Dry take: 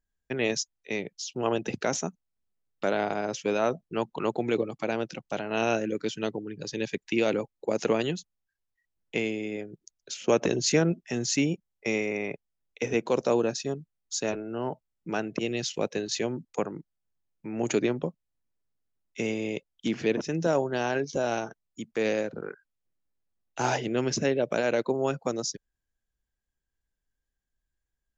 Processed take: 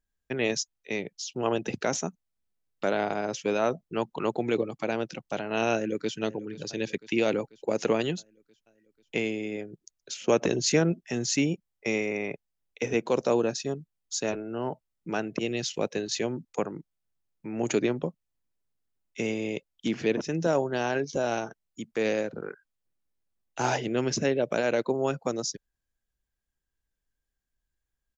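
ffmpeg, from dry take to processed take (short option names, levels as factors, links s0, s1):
-filter_complex "[0:a]asplit=2[s0][s1];[s1]afade=t=in:st=5.72:d=0.01,afade=t=out:st=6.16:d=0.01,aecho=0:1:490|980|1470|1960|2450|2940|3430:0.133352|0.0866789|0.0563413|0.0366218|0.0238042|0.0154727|0.0100573[s2];[s0][s2]amix=inputs=2:normalize=0"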